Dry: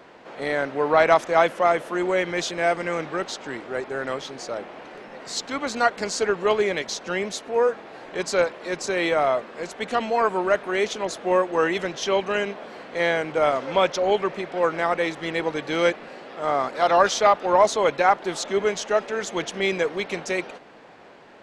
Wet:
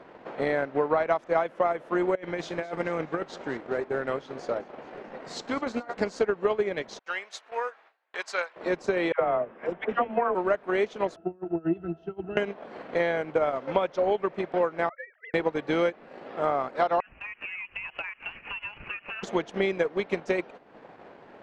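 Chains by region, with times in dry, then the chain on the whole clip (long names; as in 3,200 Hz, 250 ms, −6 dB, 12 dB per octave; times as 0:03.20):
0:02.15–0:05.94: tuned comb filter 79 Hz, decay 0.29 s, mix 40% + compressor whose output falls as the input rises −30 dBFS + feedback echo with a swinging delay time 213 ms, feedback 59%, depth 63 cents, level −17 dB
0:06.99–0:08.56: high-pass filter 1,200 Hz + noise gate with hold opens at −36 dBFS, closes at −39 dBFS
0:09.12–0:10.35: Savitzky-Golay smoothing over 25 samples + all-pass dispersion lows, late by 93 ms, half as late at 780 Hz
0:11.16–0:12.37: low-shelf EQ 380 Hz +3.5 dB + compressor whose output falls as the input rises −22 dBFS, ratio −0.5 + resonances in every octave E, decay 0.11 s
0:14.89–0:15.34: three sine waves on the formant tracks + resonant band-pass 1,700 Hz, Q 3.8
0:17.00–0:19.23: downward compressor 10 to 1, threshold −29 dBFS + voice inversion scrambler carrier 3,100 Hz
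whole clip: low-pass filter 1,500 Hz 6 dB per octave; transient designer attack +6 dB, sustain −8 dB; downward compressor 6 to 1, threshold −21 dBFS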